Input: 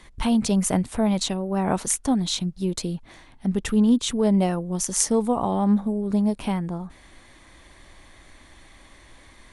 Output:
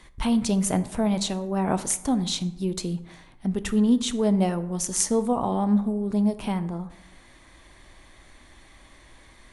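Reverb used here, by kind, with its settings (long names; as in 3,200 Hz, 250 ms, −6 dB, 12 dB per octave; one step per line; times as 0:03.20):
dense smooth reverb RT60 0.9 s, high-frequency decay 0.5×, DRR 11.5 dB
level −2 dB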